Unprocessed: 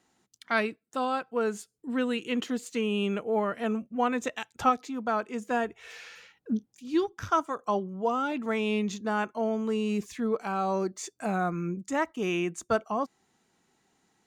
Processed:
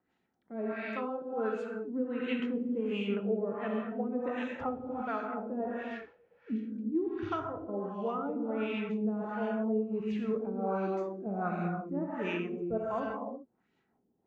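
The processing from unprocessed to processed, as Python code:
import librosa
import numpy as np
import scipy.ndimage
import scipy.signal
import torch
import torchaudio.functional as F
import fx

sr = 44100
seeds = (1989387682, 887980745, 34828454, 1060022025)

y = fx.rotary(x, sr, hz=6.0)
y = fx.rev_gated(y, sr, seeds[0], gate_ms=410, shape='flat', drr_db=0.0)
y = fx.filter_lfo_lowpass(y, sr, shape='sine', hz=1.4, low_hz=430.0, high_hz=2900.0, q=1.3)
y = y * 10.0 ** (-6.0 / 20.0)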